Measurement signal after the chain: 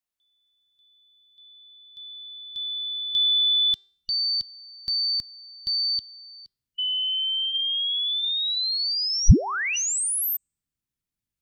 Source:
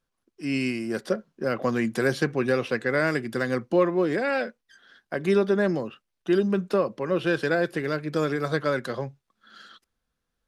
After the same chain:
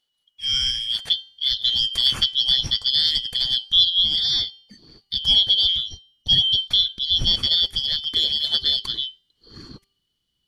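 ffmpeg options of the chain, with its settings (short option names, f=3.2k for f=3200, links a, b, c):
-af "afftfilt=real='real(if(lt(b,272),68*(eq(floor(b/68),0)*2+eq(floor(b/68),1)*3+eq(floor(b/68),2)*0+eq(floor(b/68),3)*1)+mod(b,68),b),0)':imag='imag(if(lt(b,272),68*(eq(floor(b/68),0)*2+eq(floor(b/68),1)*3+eq(floor(b/68),2)*0+eq(floor(b/68),3)*1)+mod(b,68),b),0)':win_size=2048:overlap=0.75,bandreject=f=394:t=h:w=4,bandreject=f=788:t=h:w=4,bandreject=f=1.182k:t=h:w=4,bandreject=f=1.576k:t=h:w=4,bandreject=f=1.97k:t=h:w=4,bandreject=f=2.364k:t=h:w=4,bandreject=f=2.758k:t=h:w=4,bandreject=f=3.152k:t=h:w=4,bandreject=f=3.546k:t=h:w=4,bandreject=f=3.94k:t=h:w=4,bandreject=f=4.334k:t=h:w=4,bandreject=f=4.728k:t=h:w=4,bandreject=f=5.122k:t=h:w=4,bandreject=f=5.516k:t=h:w=4,bandreject=f=5.91k:t=h:w=4,bandreject=f=6.304k:t=h:w=4,bandreject=f=6.698k:t=h:w=4,bandreject=f=7.092k:t=h:w=4,bandreject=f=7.486k:t=h:w=4,bandreject=f=7.88k:t=h:w=4,bandreject=f=8.274k:t=h:w=4,asubboost=boost=9.5:cutoff=200,volume=4dB"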